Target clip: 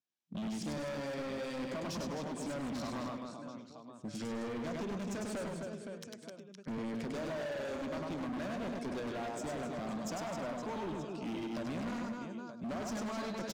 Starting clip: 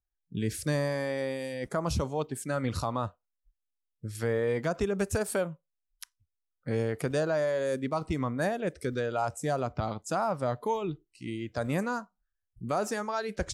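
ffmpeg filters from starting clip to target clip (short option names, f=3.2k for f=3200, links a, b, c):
-filter_complex "[0:a]acompressor=threshold=-32dB:ratio=6,highpass=f=170:w=0.5412,highpass=f=170:w=1.3066,equalizer=f=230:t=q:w=4:g=5,equalizer=f=460:t=q:w=4:g=-5,equalizer=f=830:t=q:w=4:g=-7,equalizer=f=1.3k:t=q:w=4:g=-6,equalizer=f=1.9k:t=q:w=4:g=-7,equalizer=f=4.5k:t=q:w=4:g=-3,lowpass=f=6.5k:w=0.5412,lowpass=f=6.5k:w=1.3066,asplit=2[a][b];[b]aecho=0:1:100|260|516|925.6|1581:0.631|0.398|0.251|0.158|0.1[c];[a][c]amix=inputs=2:normalize=0,asoftclip=type=hard:threshold=-39dB,asplit=2[d][e];[e]aecho=0:1:101:0.266[f];[d][f]amix=inputs=2:normalize=0,volume=2.5dB"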